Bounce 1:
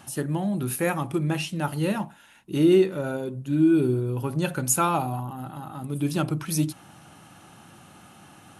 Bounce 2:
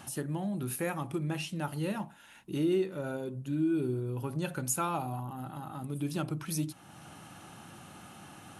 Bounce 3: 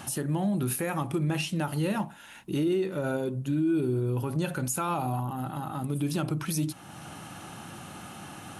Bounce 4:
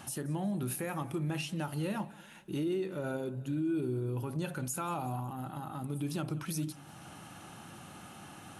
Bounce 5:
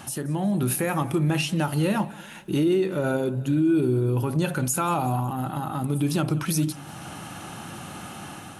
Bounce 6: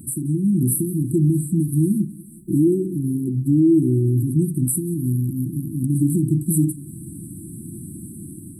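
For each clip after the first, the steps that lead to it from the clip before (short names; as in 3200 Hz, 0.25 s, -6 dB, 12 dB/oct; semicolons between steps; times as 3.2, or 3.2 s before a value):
compressor 1.5:1, threshold -45 dBFS, peak gain reduction 11 dB
limiter -27 dBFS, peak gain reduction 8.5 dB; gain +7 dB
warbling echo 0.184 s, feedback 49%, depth 121 cents, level -20.5 dB; gain -6.5 dB
AGC gain up to 4.5 dB; gain +7 dB
brick-wall FIR band-stop 370–7600 Hz; gain +6 dB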